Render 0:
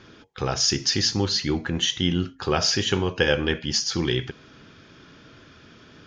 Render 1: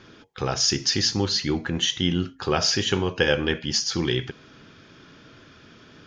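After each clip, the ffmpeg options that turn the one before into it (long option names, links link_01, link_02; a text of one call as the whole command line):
ffmpeg -i in.wav -af "equalizer=frequency=63:width=1.6:gain=-3.5" out.wav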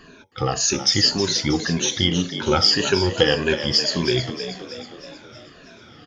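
ffmpeg -i in.wav -filter_complex "[0:a]afftfilt=real='re*pow(10,17/40*sin(2*PI*(1.5*log(max(b,1)*sr/1024/100)/log(2)-(-1.8)*(pts-256)/sr)))':imag='im*pow(10,17/40*sin(2*PI*(1.5*log(max(b,1)*sr/1024/100)/log(2)-(-1.8)*(pts-256)/sr)))':win_size=1024:overlap=0.75,asplit=2[link_01][link_02];[link_02]asplit=6[link_03][link_04][link_05][link_06][link_07][link_08];[link_03]adelay=318,afreqshift=59,volume=-10.5dB[link_09];[link_04]adelay=636,afreqshift=118,volume=-15.9dB[link_10];[link_05]adelay=954,afreqshift=177,volume=-21.2dB[link_11];[link_06]adelay=1272,afreqshift=236,volume=-26.6dB[link_12];[link_07]adelay=1590,afreqshift=295,volume=-31.9dB[link_13];[link_08]adelay=1908,afreqshift=354,volume=-37.3dB[link_14];[link_09][link_10][link_11][link_12][link_13][link_14]amix=inputs=6:normalize=0[link_15];[link_01][link_15]amix=inputs=2:normalize=0" out.wav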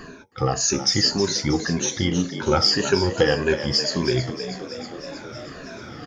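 ffmpeg -i in.wav -filter_complex "[0:a]equalizer=frequency=3200:width_type=o:width=0.73:gain=-10,areverse,acompressor=mode=upward:threshold=-27dB:ratio=2.5,areverse,asplit=2[link_01][link_02];[link_02]adelay=15,volume=-13dB[link_03];[link_01][link_03]amix=inputs=2:normalize=0" out.wav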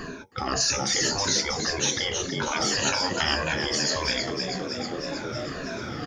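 ffmpeg -i in.wav -af "afftfilt=real='re*lt(hypot(re,im),0.2)':imag='im*lt(hypot(re,im),0.2)':win_size=1024:overlap=0.75,volume=4dB" out.wav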